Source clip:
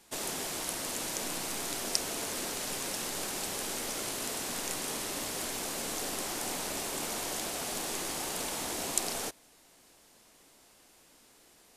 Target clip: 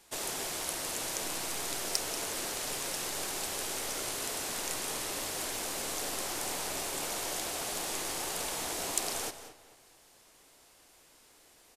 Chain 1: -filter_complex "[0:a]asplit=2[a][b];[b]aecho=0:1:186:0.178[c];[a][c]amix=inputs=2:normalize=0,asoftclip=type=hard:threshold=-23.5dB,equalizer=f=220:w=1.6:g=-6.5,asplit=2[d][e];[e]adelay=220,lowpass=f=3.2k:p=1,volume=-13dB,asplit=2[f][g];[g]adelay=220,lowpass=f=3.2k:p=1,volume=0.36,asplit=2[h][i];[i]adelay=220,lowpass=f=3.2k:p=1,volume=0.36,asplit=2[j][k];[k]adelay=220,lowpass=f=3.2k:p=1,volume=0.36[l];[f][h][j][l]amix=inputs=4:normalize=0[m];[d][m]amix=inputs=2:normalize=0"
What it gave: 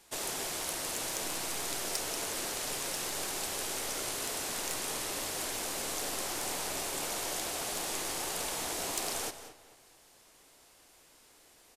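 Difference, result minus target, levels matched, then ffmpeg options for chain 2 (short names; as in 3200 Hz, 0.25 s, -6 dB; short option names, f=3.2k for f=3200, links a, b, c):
hard clip: distortion +8 dB
-filter_complex "[0:a]asplit=2[a][b];[b]aecho=0:1:186:0.178[c];[a][c]amix=inputs=2:normalize=0,asoftclip=type=hard:threshold=-13dB,equalizer=f=220:w=1.6:g=-6.5,asplit=2[d][e];[e]adelay=220,lowpass=f=3.2k:p=1,volume=-13dB,asplit=2[f][g];[g]adelay=220,lowpass=f=3.2k:p=1,volume=0.36,asplit=2[h][i];[i]adelay=220,lowpass=f=3.2k:p=1,volume=0.36,asplit=2[j][k];[k]adelay=220,lowpass=f=3.2k:p=1,volume=0.36[l];[f][h][j][l]amix=inputs=4:normalize=0[m];[d][m]amix=inputs=2:normalize=0"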